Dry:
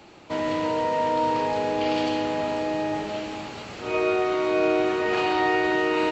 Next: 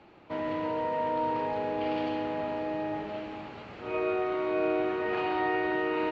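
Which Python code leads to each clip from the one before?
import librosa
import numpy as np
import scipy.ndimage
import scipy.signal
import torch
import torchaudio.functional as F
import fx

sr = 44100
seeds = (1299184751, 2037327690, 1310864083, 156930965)

y = scipy.signal.sosfilt(scipy.signal.butter(2, 2600.0, 'lowpass', fs=sr, output='sos'), x)
y = y * 10.0 ** (-6.0 / 20.0)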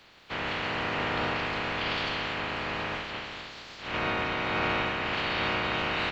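y = fx.spec_clip(x, sr, under_db=29)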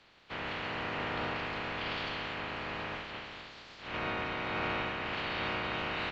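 y = fx.air_absorb(x, sr, metres=53.0)
y = y * 10.0 ** (-5.5 / 20.0)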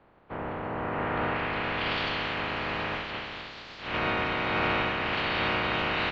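y = fx.filter_sweep_lowpass(x, sr, from_hz=980.0, to_hz=5100.0, start_s=0.71, end_s=2.0, q=0.78)
y = y * 10.0 ** (7.0 / 20.0)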